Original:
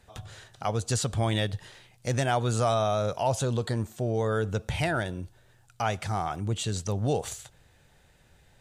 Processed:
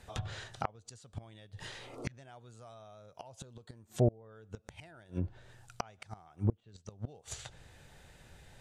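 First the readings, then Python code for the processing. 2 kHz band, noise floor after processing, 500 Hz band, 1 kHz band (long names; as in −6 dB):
−15.0 dB, −66 dBFS, −13.0 dB, −15.5 dB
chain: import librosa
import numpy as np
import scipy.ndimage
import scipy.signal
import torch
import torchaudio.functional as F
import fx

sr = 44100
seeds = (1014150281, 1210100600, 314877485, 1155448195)

y = fx.spec_repair(x, sr, seeds[0], start_s=1.8, length_s=0.31, low_hz=240.0, high_hz=1400.0, source='both')
y = fx.gate_flip(y, sr, shuts_db=-21.0, range_db=-31)
y = fx.env_lowpass_down(y, sr, base_hz=930.0, full_db=-32.0)
y = F.gain(torch.from_numpy(y), 3.5).numpy()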